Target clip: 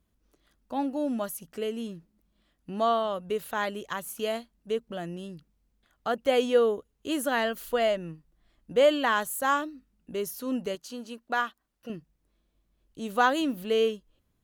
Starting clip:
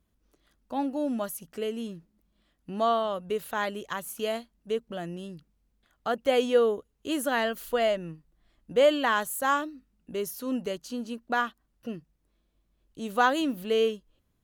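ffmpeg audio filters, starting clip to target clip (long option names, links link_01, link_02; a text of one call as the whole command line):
ffmpeg -i in.wav -filter_complex "[0:a]asettb=1/sr,asplit=3[link_01][link_02][link_03];[link_01]atrim=end=10.754[link_04];[link_02]atrim=start=10.75:end=11.9,asetpts=PTS-STARTPTS,afade=type=in:duration=0.004:curve=qsin,afade=type=out:start_time=1.146:duration=0.004:curve=qsin,lowshelf=frequency=260:gain=-11[link_05];[link_03]atrim=start=11.896[link_06];[link_04][link_05]acrossfade=duration=0.004:curve1=hsin:curve2=qsin[link_07];[link_07][link_06]acrossfade=duration=0.004:curve1=qsin:curve2=hsin" out.wav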